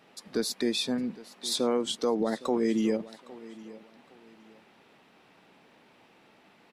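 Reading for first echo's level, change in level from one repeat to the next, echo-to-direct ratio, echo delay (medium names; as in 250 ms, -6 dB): -19.0 dB, -11.0 dB, -18.5 dB, 811 ms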